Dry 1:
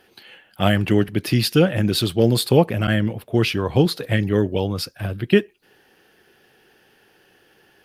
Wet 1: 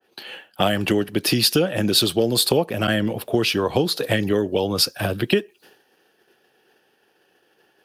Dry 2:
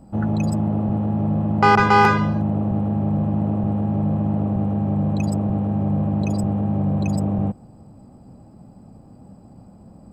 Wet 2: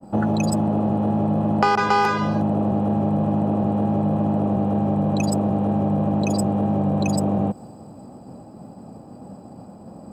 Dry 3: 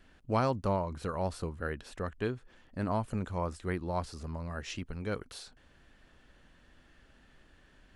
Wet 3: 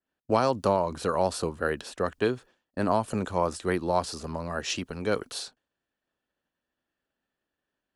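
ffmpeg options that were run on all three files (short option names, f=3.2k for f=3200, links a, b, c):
-filter_complex "[0:a]highpass=f=92:p=1,acrossover=split=270|3000[a][b][c];[c]acontrast=78[d];[a][b][d]amix=inputs=3:normalize=0,equalizer=f=620:w=0.31:g=10.5,agate=range=-33dB:threshold=-38dB:ratio=3:detection=peak,bandreject=f=2.1k:w=17,acompressor=threshold=-18dB:ratio=4,adynamicequalizer=threshold=0.0112:dfrequency=3100:dqfactor=0.7:tfrequency=3100:tqfactor=0.7:attack=5:release=100:ratio=0.375:range=3:mode=boostabove:tftype=highshelf"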